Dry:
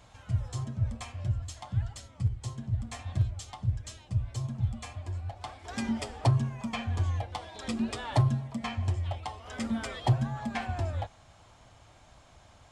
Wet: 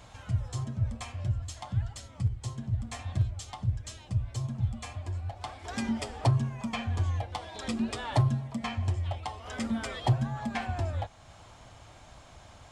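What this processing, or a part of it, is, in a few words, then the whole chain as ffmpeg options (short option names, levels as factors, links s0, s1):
parallel compression: -filter_complex "[0:a]asplit=2[s0][s1];[s1]acompressor=threshold=0.00562:ratio=6,volume=0.944[s2];[s0][s2]amix=inputs=2:normalize=0,volume=0.891"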